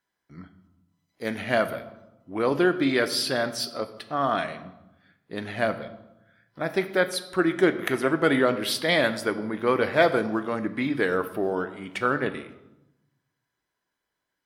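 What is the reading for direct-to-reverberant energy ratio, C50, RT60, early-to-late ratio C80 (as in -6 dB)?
9.0 dB, 13.0 dB, 0.95 s, 15.0 dB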